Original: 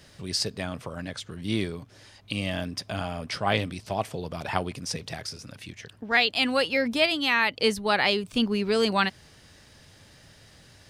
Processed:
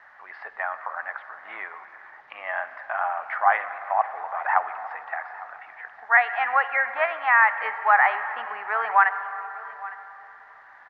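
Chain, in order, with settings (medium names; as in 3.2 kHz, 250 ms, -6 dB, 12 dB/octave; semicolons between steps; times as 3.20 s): Chebyshev band-pass 770–1900 Hz, order 3; in parallel at -1 dB: peak limiter -23.5 dBFS, peak gain reduction 10 dB; on the sum: bit crusher 11-bit; distance through air 260 m; delay 856 ms -19 dB; on a send at -11 dB: reverberation RT60 3.8 s, pre-delay 42 ms; on the sum: trim +7.5 dB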